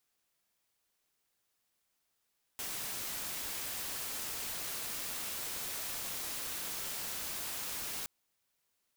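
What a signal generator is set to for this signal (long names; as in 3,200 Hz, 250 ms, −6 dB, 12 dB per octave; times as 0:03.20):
noise white, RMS −39.5 dBFS 5.47 s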